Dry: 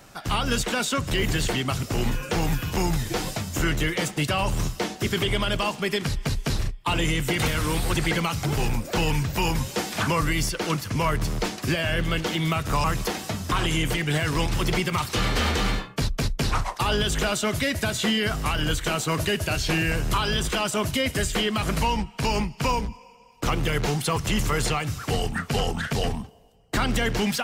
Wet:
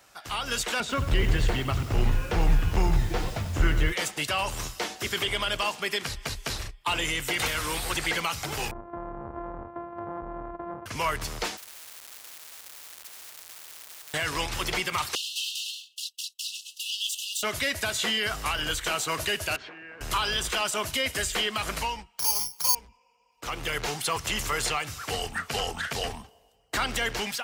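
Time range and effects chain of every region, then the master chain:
0.8–3.92 RIAA curve playback + lo-fi delay 91 ms, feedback 55%, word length 6-bit, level -11.5 dB
8.71–10.86 sample sorter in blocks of 128 samples + LPF 1100 Hz 24 dB/oct + compressor, threshold -25 dBFS
11.57–14.14 compressor 10:1, threshold -27 dBFS + Schmitt trigger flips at -40 dBFS + spectral compressor 10:1
15.15–17.43 minimum comb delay 3.5 ms + brick-wall FIR high-pass 2600 Hz
19.56–20.01 Chebyshev band-pass 230–1700 Hz + compressor 16:1, threshold -36 dBFS
22.19–22.75 bell 1000 Hz +9 dB 0.89 oct + careless resampling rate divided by 8×, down filtered, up zero stuff
whole clip: HPF 54 Hz; bell 160 Hz -14.5 dB 2.6 oct; AGC gain up to 5 dB; gain -5 dB

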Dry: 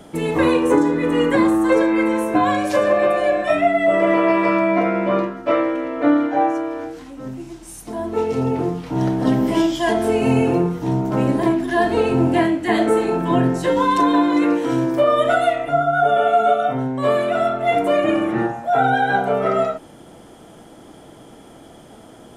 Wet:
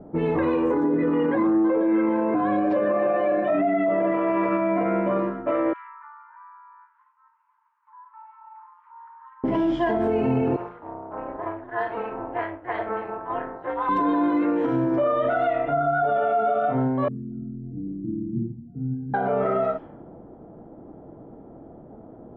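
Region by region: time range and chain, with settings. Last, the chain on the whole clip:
0.84–4.12 low shelf 460 Hz +8.5 dB + phaser 1.1 Hz, delay 1.3 ms, feedback 29% + BPF 220–3900 Hz
5.73–9.44 brick-wall FIR high-pass 870 Hz + compressor 2.5:1, threshold -37 dBFS + high shelf 2600 Hz -6.5 dB
10.56–13.89 HPF 770 Hz + AM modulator 230 Hz, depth 60%
17.08–19.14 inverse Chebyshev band-stop 570–3800 Hz, stop band 50 dB + bell 7000 Hz -8 dB 0.7 oct
whole clip: low-pass opened by the level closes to 580 Hz, open at -16 dBFS; LPF 1700 Hz 12 dB/oct; limiter -15 dBFS

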